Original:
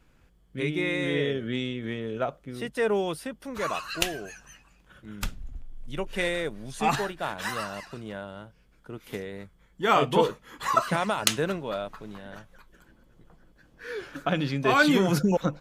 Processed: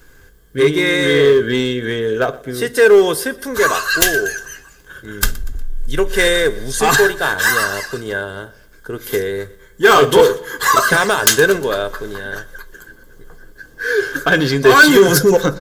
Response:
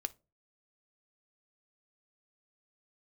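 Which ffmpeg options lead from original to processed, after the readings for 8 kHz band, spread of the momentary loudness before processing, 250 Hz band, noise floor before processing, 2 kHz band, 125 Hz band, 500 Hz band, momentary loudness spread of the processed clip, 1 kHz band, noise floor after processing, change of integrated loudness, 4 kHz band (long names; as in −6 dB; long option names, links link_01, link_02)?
+17.0 dB, 20 LU, +9.5 dB, −61 dBFS, +17.0 dB, +8.5 dB, +15.5 dB, 17 LU, +10.5 dB, −45 dBFS, +14.0 dB, +13.5 dB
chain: -filter_complex "[0:a]equalizer=frequency=250:width_type=o:width=0.33:gain=8,equalizer=frequency=400:width_type=o:width=0.33:gain=7,equalizer=frequency=1600:width_type=o:width=0.33:gain=11,equalizer=frequency=2500:width_type=o:width=0.33:gain=-8[link_01];[1:a]atrim=start_sample=2205[link_02];[link_01][link_02]afir=irnorm=-1:irlink=0,asplit=2[link_03][link_04];[link_04]asoftclip=type=hard:threshold=-21.5dB,volume=-5dB[link_05];[link_03][link_05]amix=inputs=2:normalize=0,equalizer=frequency=9400:width=5.9:gain=-5.5,aecho=1:1:1.9:0.37,asplit=2[link_06][link_07];[link_07]aecho=0:1:120|240|360:0.0794|0.0389|0.0191[link_08];[link_06][link_08]amix=inputs=2:normalize=0,crystalizer=i=3:c=0,aeval=exprs='2.99*sin(PI/2*5.01*val(0)/2.99)':channel_layout=same,volume=-11dB"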